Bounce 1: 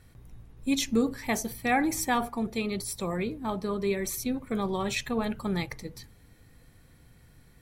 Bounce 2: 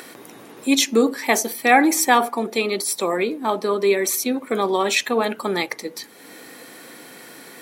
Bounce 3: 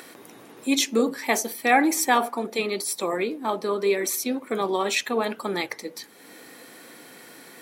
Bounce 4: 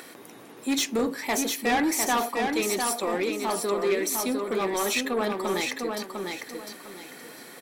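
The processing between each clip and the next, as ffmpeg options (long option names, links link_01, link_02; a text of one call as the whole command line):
ffmpeg -i in.wav -filter_complex "[0:a]highpass=frequency=280:width=0.5412,highpass=frequency=280:width=1.3066,asplit=2[link_01][link_02];[link_02]acompressor=mode=upward:threshold=-35dB:ratio=2.5,volume=2dB[link_03];[link_01][link_03]amix=inputs=2:normalize=0,volume=4.5dB" out.wav
ffmpeg -i in.wav -af "flanger=delay=0.8:depth=4.7:regen=-87:speed=2:shape=triangular" out.wav
ffmpeg -i in.wav -filter_complex "[0:a]asoftclip=type=tanh:threshold=-20dB,asplit=2[link_01][link_02];[link_02]aecho=0:1:702|1404|2106|2808:0.596|0.161|0.0434|0.0117[link_03];[link_01][link_03]amix=inputs=2:normalize=0" out.wav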